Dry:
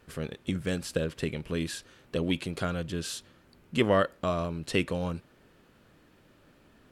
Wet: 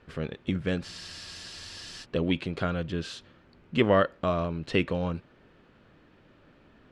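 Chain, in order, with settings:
low-pass filter 3,700 Hz 12 dB per octave
frozen spectrum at 0:00.85, 1.18 s
level +2 dB

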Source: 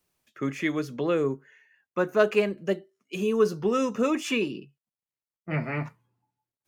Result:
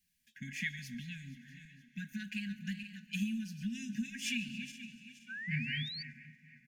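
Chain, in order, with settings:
feedback delay that plays each chunk backwards 236 ms, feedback 56%, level −14 dB
comb filter 4.2 ms, depth 48%
downward compressor 6 to 1, threshold −26 dBFS, peak gain reduction 11.5 dB
on a send: feedback echo with a high-pass in the loop 141 ms, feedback 64%, level −20 dB
on the sum: dense smooth reverb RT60 4.8 s, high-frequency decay 1×, DRR 19 dB
sound drawn into the spectrogram rise, 0:04.43–0:06.03, 390–4,700 Hz −40 dBFS
linear-phase brick-wall band-stop 250–1,500 Hz
level −3 dB

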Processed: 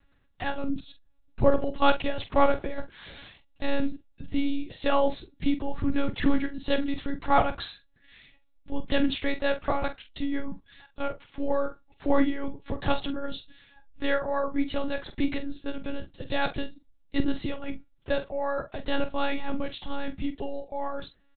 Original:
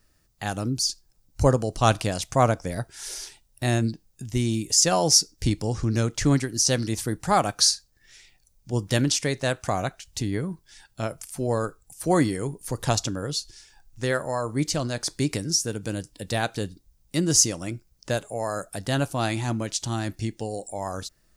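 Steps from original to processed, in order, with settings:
0:02.17–0:03.88: one scale factor per block 5 bits
one-pitch LPC vocoder at 8 kHz 280 Hz
double-tracking delay 45 ms −11 dB

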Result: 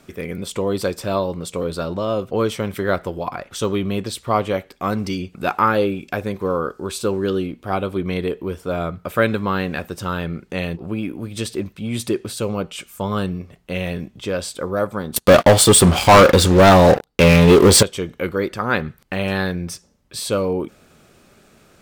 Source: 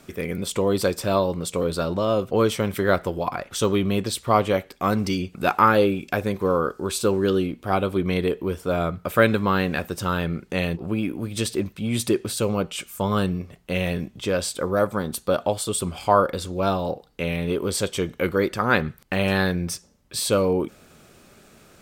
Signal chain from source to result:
high-shelf EQ 6,800 Hz −3.5 dB
0:15.16–0:17.83: leveller curve on the samples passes 5

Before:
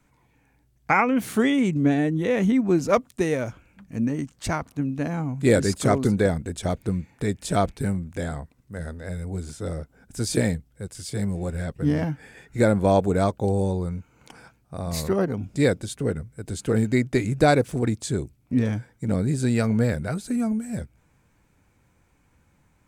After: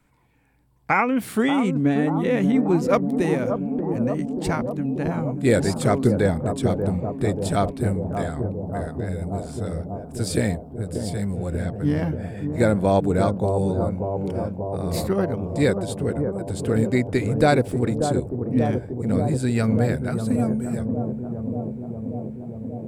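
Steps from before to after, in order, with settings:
parametric band 6,300 Hz −7.5 dB 0.25 octaves
bucket-brigade delay 585 ms, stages 4,096, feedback 77%, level −6.5 dB

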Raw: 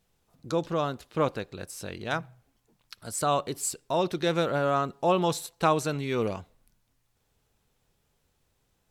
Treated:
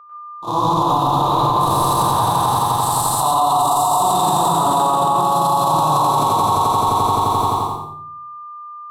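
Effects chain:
spectrum averaged block by block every 400 ms
automatic gain control gain up to 14 dB
multi-voice chorus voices 2, 0.51 Hz, delay 29 ms, depth 3.3 ms
echo that builds up and dies away 86 ms, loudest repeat 5, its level −8.5 dB
noise gate −29 dBFS, range −49 dB
drawn EQ curve 210 Hz 0 dB, 340 Hz −6 dB, 520 Hz −23 dB, 960 Hz +9 dB, 1,400 Hz −19 dB, 2,300 Hz −24 dB, 3,800 Hz −2 dB, 5,900 Hz −8 dB, 14,000 Hz +6 dB
steady tone 1,200 Hz −55 dBFS
low shelf with overshoot 340 Hz −11 dB, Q 1.5
convolution reverb RT60 0.55 s, pre-delay 96 ms, DRR −3 dB
boost into a limiter +20.5 dB
level −7 dB

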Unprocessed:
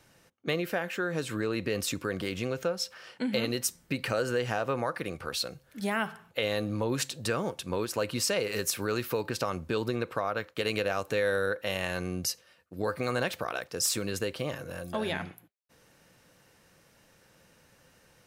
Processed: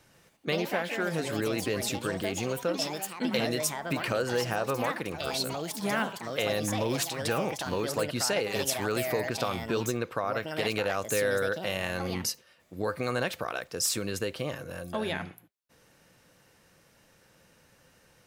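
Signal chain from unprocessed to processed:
delay with pitch and tempo change per echo 137 ms, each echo +4 semitones, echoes 3, each echo −6 dB

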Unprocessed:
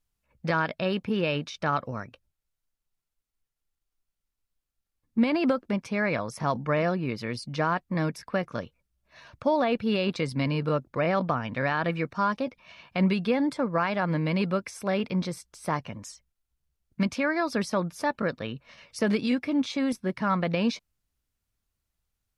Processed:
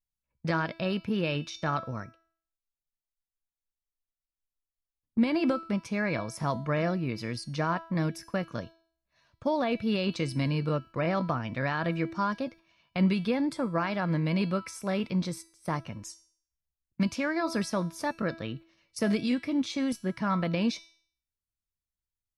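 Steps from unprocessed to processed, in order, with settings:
noise gate −43 dBFS, range −14 dB
bass and treble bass +5 dB, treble +5 dB
tuned comb filter 330 Hz, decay 0.53 s, mix 70%
level +5.5 dB

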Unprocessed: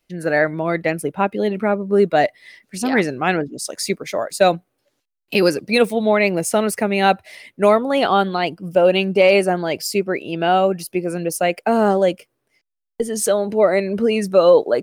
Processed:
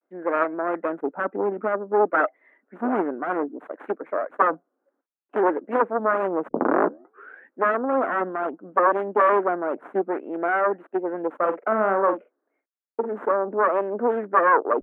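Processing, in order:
phase distortion by the signal itself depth 0.75 ms
0:06.48: tape start 1.15 s
elliptic band-pass filter 260–1,500 Hz, stop band 50 dB
pitch vibrato 0.58 Hz 70 cents
0:11.37–0:13.13: double-tracking delay 46 ms −8.5 dB
level −2 dB

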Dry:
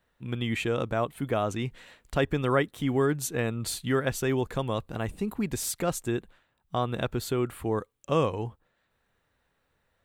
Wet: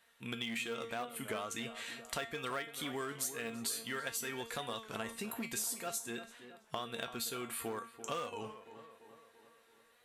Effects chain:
linear-phase brick-wall low-pass 13,000 Hz
bass and treble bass +1 dB, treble −5 dB
tuned comb filter 230 Hz, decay 0.28 s, harmonics all, mix 80%
in parallel at −5 dB: hard clipping −33.5 dBFS, distortion −10 dB
on the sum: spectral tilt +4.5 dB per octave
downward compressor 5 to 1, threshold −47 dBFS, peak gain reduction 19 dB
on a send: tape delay 337 ms, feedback 61%, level −11 dB, low-pass 2,100 Hz
on the sum: wow of a warped record 33 1/3 rpm, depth 100 cents
level +9 dB

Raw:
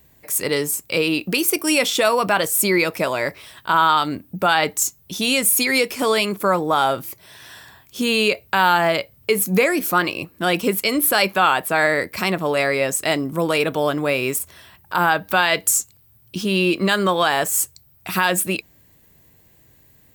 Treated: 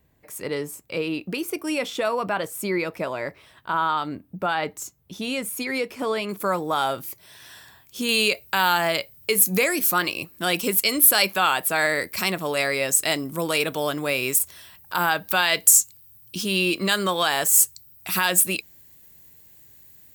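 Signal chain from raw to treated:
high-shelf EQ 3,100 Hz −10 dB, from 0:06.29 +4.5 dB, from 0:08.09 +11 dB
level −6 dB

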